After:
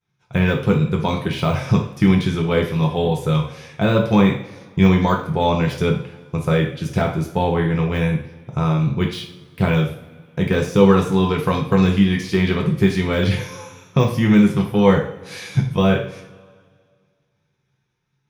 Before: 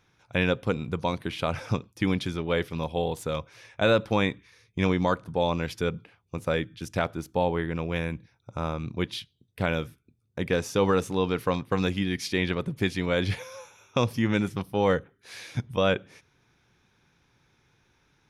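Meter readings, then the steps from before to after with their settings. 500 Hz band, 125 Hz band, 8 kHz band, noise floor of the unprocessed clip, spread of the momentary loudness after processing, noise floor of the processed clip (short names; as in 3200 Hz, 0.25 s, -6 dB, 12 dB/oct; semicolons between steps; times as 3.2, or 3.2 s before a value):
+7.0 dB, +12.5 dB, +4.0 dB, -69 dBFS, 11 LU, -69 dBFS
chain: notch 620 Hz, Q 17; expander -54 dBFS; de-esser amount 100%; bell 140 Hz +12.5 dB 0.37 oct; two-slope reverb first 0.45 s, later 2 s, from -20 dB, DRR 0 dB; gain +5 dB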